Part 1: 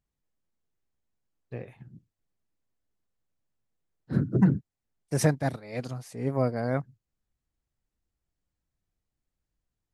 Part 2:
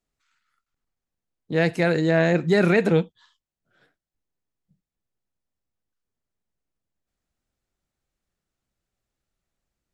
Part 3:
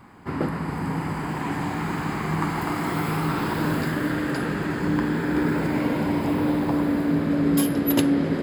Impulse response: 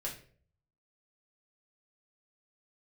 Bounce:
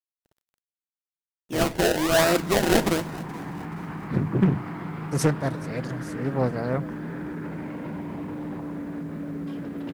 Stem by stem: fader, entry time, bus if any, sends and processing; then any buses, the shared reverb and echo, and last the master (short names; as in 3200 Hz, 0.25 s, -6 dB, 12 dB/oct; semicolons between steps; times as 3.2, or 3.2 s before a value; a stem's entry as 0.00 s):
+0.5 dB, 0.00 s, send -18.5 dB, echo send -19.5 dB, high shelf 10000 Hz -4 dB
-2.0 dB, 0.00 s, send -10.5 dB, echo send -19.5 dB, tilt shelf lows -4 dB, about 1100 Hz; comb 3.2 ms, depth 64%; decimation with a swept rate 27×, swing 100% 1.2 Hz
-7.5 dB, 1.90 s, no send, no echo send, LPF 2600 Hz 12 dB/oct; bell 180 Hz +7 dB 0.46 oct; limiter -19 dBFS, peak gain reduction 10.5 dB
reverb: on, RT60 0.50 s, pre-delay 4 ms
echo: feedback echo 0.426 s, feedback 43%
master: high shelf 6700 Hz +4 dB; bit-crush 10-bit; Doppler distortion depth 0.6 ms